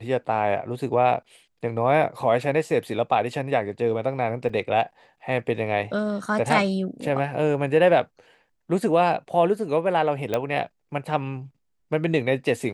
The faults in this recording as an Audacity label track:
4.490000	4.490000	drop-out 4.9 ms
10.340000	10.340000	click −11 dBFS

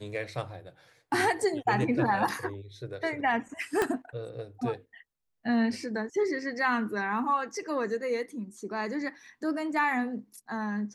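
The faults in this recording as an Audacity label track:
3.820000	3.820000	click −13 dBFS

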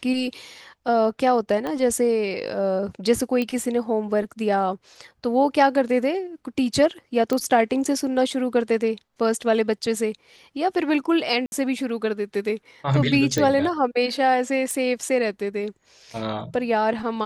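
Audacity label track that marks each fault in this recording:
1.670000	1.670000	click −16 dBFS
3.420000	3.420000	click −14 dBFS
7.330000	7.330000	click −12 dBFS
11.460000	11.520000	drop-out 61 ms
13.380000	13.380000	click −10 dBFS
14.710000	14.710000	click −14 dBFS

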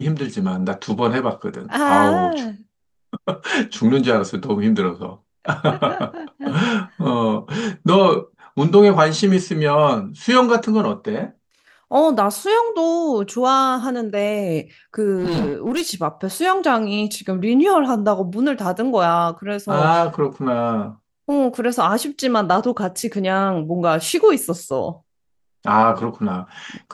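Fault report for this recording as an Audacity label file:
15.170000	15.910000	clipping −17 dBFS

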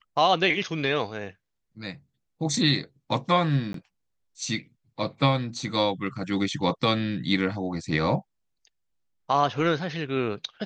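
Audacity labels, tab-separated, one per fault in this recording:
3.730000	3.740000	drop-out 13 ms

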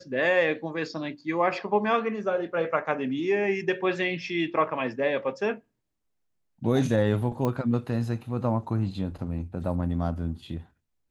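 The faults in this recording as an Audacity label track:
7.450000	7.450000	click −16 dBFS

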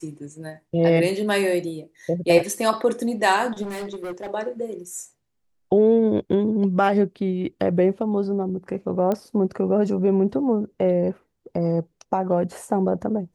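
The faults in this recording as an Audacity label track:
3.620000	4.310000	clipping −28 dBFS
9.120000	9.120000	click −13 dBFS

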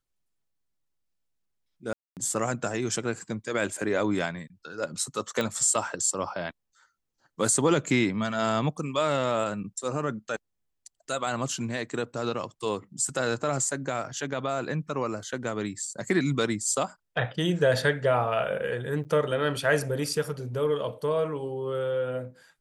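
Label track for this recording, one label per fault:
1.930000	2.170000	drop-out 238 ms
5.410000	5.410000	click −15 dBFS
19.040000	19.050000	drop-out 8.9 ms

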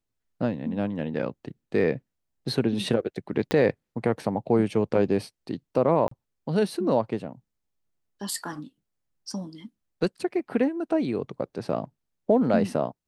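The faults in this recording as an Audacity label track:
3.510000	3.510000	click −11 dBFS
6.080000	6.110000	drop-out 34 ms

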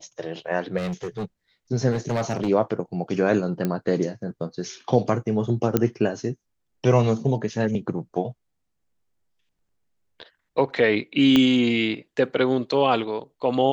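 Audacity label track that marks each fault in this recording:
0.770000	1.250000	clipping −25 dBFS
1.910000	2.490000	clipping −19.5 dBFS
3.650000	3.650000	click −12 dBFS
5.770000	5.770000	click −6 dBFS
11.360000	11.360000	click −7 dBFS

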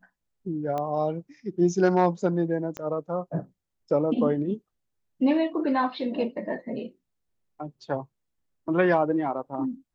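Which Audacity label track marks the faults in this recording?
0.780000	0.780000	click −19 dBFS
2.770000	2.770000	click −20 dBFS

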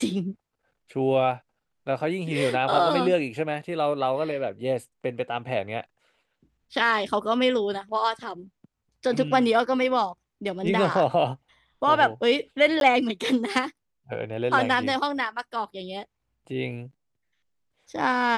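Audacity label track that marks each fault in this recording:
12.800000	12.810000	drop-out 12 ms

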